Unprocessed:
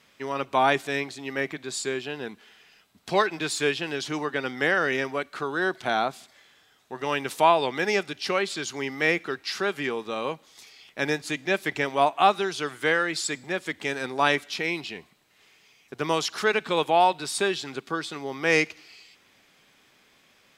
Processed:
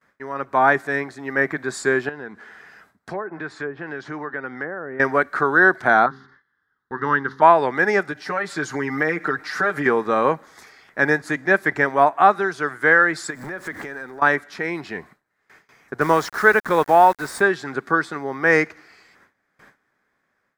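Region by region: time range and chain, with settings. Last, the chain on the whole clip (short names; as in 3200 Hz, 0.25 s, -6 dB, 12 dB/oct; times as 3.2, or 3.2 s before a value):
2.09–5 treble ducked by the level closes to 840 Hz, closed at -19.5 dBFS + HPF 41 Hz + compressor 2:1, threshold -50 dBFS
6.06–7.42 air absorption 130 m + fixed phaser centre 2400 Hz, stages 6 + de-hum 67.07 Hz, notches 6
8.11–9.86 comb 6.6 ms, depth 95% + compressor 2.5:1, threshold -34 dBFS
13.3–14.22 zero-crossing step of -38.5 dBFS + compressor, threshold -37 dBFS
16.01–17.41 HPF 44 Hz + requantised 6-bit, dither none
whole clip: gate with hold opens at -48 dBFS; AGC gain up to 13 dB; resonant high shelf 2200 Hz -9 dB, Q 3; gain -2 dB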